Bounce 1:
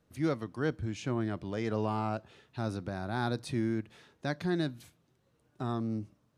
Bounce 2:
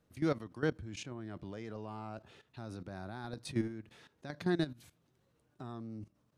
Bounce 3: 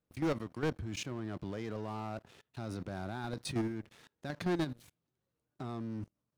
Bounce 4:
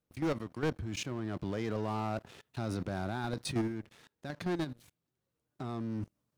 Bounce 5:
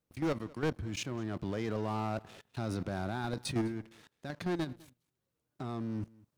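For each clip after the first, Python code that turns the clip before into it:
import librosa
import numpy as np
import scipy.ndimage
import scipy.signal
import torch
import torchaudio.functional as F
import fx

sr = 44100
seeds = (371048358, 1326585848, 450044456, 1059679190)

y1 = fx.level_steps(x, sr, step_db=15)
y1 = F.gain(torch.from_numpy(y1), 1.0).numpy()
y2 = fx.leveller(y1, sr, passes=3)
y2 = F.gain(torch.from_numpy(y2), -6.5).numpy()
y3 = fx.rider(y2, sr, range_db=10, speed_s=2.0)
y3 = F.gain(torch.from_numpy(y3), 2.5).numpy()
y4 = y3 + 10.0 ** (-23.5 / 20.0) * np.pad(y3, (int(204 * sr / 1000.0), 0))[:len(y3)]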